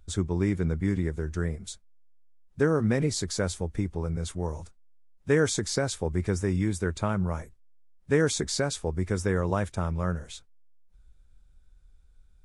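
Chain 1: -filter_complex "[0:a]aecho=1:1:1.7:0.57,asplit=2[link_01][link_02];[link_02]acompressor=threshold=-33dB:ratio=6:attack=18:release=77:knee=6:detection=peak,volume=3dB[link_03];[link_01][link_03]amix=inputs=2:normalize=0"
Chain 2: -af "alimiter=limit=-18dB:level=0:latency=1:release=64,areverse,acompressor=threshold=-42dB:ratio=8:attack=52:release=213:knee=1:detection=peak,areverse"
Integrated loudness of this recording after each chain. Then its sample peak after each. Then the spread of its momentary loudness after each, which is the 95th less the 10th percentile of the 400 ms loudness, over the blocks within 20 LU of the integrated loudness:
−23.5, −42.5 LKFS; −8.0, −24.5 dBFS; 10, 5 LU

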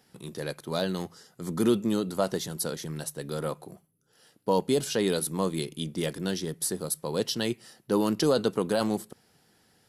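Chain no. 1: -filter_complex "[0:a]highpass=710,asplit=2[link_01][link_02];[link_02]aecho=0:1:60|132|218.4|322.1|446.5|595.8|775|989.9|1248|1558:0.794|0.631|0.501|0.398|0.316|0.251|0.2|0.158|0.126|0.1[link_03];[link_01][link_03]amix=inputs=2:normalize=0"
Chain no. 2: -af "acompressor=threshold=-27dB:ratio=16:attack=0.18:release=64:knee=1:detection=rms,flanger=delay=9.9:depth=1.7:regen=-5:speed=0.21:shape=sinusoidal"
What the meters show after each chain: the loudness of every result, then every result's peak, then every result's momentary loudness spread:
−30.5, −39.5 LKFS; −14.5, −25.0 dBFS; 12, 8 LU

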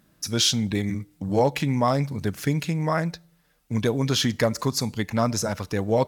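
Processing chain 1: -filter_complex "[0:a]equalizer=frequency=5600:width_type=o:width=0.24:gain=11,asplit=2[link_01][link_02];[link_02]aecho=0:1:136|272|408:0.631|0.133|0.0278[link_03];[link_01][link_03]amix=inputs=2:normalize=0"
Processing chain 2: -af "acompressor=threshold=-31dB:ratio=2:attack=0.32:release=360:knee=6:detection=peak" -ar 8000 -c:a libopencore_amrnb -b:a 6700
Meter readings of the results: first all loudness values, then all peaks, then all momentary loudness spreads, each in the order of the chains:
−21.5, −34.5 LKFS; −4.0, −19.0 dBFS; 10, 5 LU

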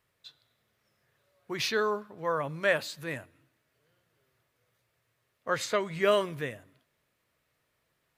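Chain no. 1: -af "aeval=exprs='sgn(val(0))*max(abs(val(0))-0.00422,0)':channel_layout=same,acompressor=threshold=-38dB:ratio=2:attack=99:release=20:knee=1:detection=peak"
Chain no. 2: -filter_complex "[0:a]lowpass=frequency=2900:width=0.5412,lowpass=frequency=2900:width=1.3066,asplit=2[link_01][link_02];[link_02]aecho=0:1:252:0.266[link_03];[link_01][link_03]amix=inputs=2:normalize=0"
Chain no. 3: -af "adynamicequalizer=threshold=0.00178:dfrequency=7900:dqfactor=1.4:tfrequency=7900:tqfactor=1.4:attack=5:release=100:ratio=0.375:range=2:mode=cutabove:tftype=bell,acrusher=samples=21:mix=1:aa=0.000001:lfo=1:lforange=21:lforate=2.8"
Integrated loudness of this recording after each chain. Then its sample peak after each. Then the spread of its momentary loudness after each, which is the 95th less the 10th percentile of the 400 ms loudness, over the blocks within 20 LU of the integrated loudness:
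−33.0, −30.5, −30.0 LKFS; −15.0, −13.0, −12.5 dBFS; 10, 16, 14 LU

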